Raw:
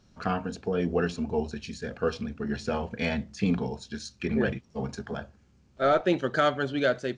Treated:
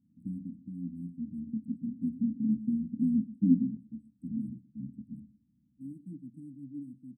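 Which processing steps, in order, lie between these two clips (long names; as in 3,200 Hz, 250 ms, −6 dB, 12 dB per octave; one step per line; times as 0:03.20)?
adaptive Wiener filter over 25 samples
high-pass filter 190 Hz 12 dB per octave
high-shelf EQ 7,300 Hz −7.5 dB
speech leveller within 3 dB 0.5 s
linear-phase brick-wall band-stop 310–7,800 Hz
0:01.47–0:03.77: parametric band 250 Hz +11.5 dB 0.79 octaves
single-tap delay 123 ms −18.5 dB
level −5 dB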